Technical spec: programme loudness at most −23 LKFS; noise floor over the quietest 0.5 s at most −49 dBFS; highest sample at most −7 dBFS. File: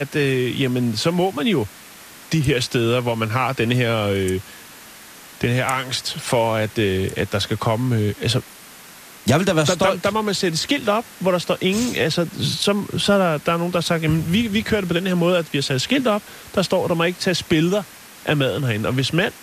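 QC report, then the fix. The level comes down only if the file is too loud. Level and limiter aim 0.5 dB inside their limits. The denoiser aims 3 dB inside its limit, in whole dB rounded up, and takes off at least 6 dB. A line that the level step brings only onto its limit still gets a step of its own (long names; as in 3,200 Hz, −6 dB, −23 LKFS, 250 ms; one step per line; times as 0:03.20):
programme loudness −20.5 LKFS: out of spec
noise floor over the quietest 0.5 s −42 dBFS: out of spec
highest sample −4.0 dBFS: out of spec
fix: broadband denoise 7 dB, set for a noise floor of −42 dBFS
level −3 dB
brickwall limiter −7.5 dBFS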